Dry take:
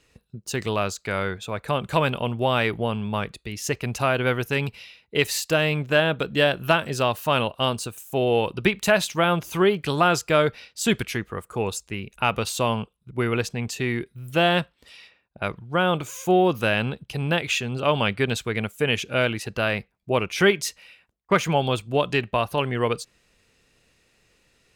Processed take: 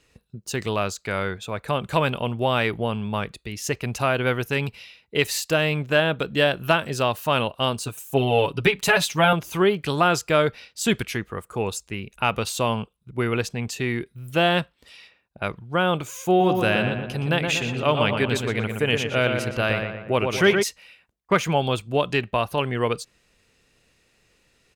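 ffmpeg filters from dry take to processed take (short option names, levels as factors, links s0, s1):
-filter_complex "[0:a]asettb=1/sr,asplit=3[s0][s1][s2];[s0]atrim=end=7.864[s3];[s1]atrim=start=7.86:end=9.33,asetpts=PTS-STARTPTS,afade=t=in:d=0.004:c=qsin,afade=t=out:st=1.466:d=0.004:c=qsin,aecho=1:1:7.1:0.94,atrim=end_sample=64827[s4];[s2]atrim=start=9.326[s5];[s3][s4]acrossfade=d=0.004:c1=hsin:c2=qsin[s6];[s6][s5]acrossfade=d=0.004:c1=qsin:c2=hsin,asplit=3[s7][s8][s9];[s7]afade=t=out:st=16.39:d=0.02[s10];[s8]asplit=2[s11][s12];[s12]adelay=119,lowpass=f=2500:p=1,volume=0.596,asplit=2[s13][s14];[s14]adelay=119,lowpass=f=2500:p=1,volume=0.52,asplit=2[s15][s16];[s16]adelay=119,lowpass=f=2500:p=1,volume=0.52,asplit=2[s17][s18];[s18]adelay=119,lowpass=f=2500:p=1,volume=0.52,asplit=2[s19][s20];[s20]adelay=119,lowpass=f=2500:p=1,volume=0.52,asplit=2[s21][s22];[s22]adelay=119,lowpass=f=2500:p=1,volume=0.52,asplit=2[s23][s24];[s24]adelay=119,lowpass=f=2500:p=1,volume=0.52[s25];[s11][s13][s15][s17][s19][s21][s23][s25]amix=inputs=8:normalize=0,afade=t=in:st=16.39:d=0.02,afade=t=out:st=20.62:d=0.02[s26];[s9]afade=t=in:st=20.62:d=0.02[s27];[s10][s26][s27]amix=inputs=3:normalize=0"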